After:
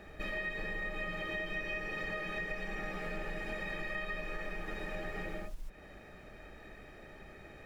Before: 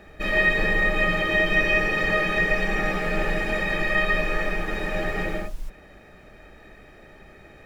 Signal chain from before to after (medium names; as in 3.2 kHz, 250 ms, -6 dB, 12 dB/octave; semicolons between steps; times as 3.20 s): compression 4:1, threshold -34 dBFS, peak gain reduction 15.5 dB; trim -4 dB